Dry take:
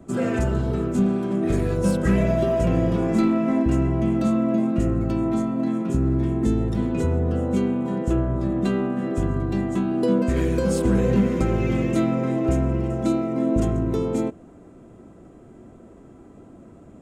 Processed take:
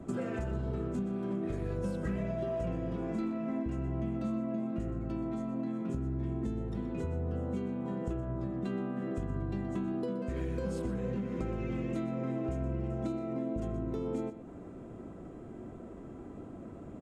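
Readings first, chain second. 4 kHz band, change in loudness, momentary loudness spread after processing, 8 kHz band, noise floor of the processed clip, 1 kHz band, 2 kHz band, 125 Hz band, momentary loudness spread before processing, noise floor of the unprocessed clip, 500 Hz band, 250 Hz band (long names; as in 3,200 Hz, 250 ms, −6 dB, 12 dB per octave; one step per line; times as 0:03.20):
below −15 dB, −13.0 dB, 12 LU, below −15 dB, −47 dBFS, −13.0 dB, −14.0 dB, −12.5 dB, 4 LU, −47 dBFS, −13.0 dB, −13.5 dB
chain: high-shelf EQ 5,500 Hz −9.5 dB
downward compressor, threshold −33 dBFS, peak gain reduction 17.5 dB
on a send: single-tap delay 123 ms −12.5 dB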